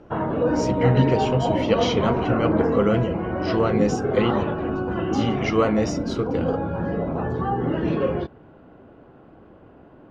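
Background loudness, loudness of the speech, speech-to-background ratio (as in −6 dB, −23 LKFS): −24.5 LKFS, −24.5 LKFS, 0.0 dB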